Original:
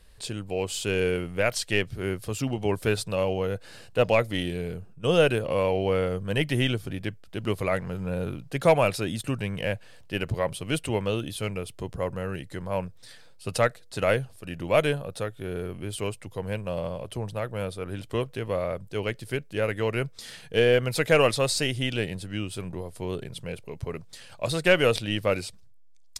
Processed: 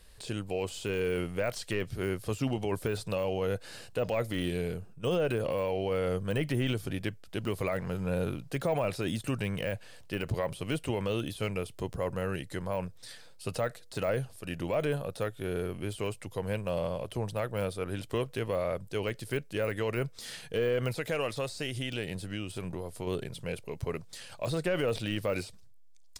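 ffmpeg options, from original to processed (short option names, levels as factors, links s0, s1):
-filter_complex "[0:a]asettb=1/sr,asplit=3[s0][s1][s2];[s0]atrim=end=20.924[s3];[s1]atrim=start=20.92:end=23.07,asetpts=PTS-STARTPTS,afade=t=in:d=0.004:c=qsin,afade=t=out:st=2.146:d=0.004:c=qsin,acompressor=threshold=0.0282:ratio=3:attack=3.2:release=140:knee=1:detection=peak[s4];[s2]atrim=start=23.066[s5];[s3][s4]acrossfade=d=0.004:c1=hsin:c2=qsin[s6];[s6][s5]acrossfade=d=0.004:c1=qsin:c2=hsin,bass=f=250:g=-2,treble=f=4000:g=3,deesser=0.95,alimiter=limit=0.0891:level=0:latency=1:release=32"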